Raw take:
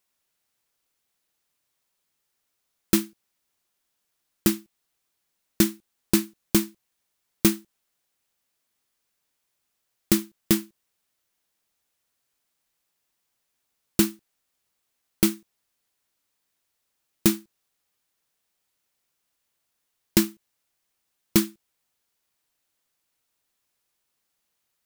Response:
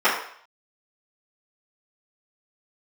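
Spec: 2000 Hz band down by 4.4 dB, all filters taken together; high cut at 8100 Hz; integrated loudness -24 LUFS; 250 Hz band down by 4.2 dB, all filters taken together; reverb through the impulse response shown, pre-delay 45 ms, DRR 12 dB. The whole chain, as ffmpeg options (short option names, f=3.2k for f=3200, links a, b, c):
-filter_complex "[0:a]lowpass=8.1k,equalizer=f=250:t=o:g=-6,equalizer=f=2k:t=o:g=-5.5,asplit=2[a][b];[1:a]atrim=start_sample=2205,adelay=45[c];[b][c]afir=irnorm=-1:irlink=0,volume=-33dB[d];[a][d]amix=inputs=2:normalize=0,volume=6dB"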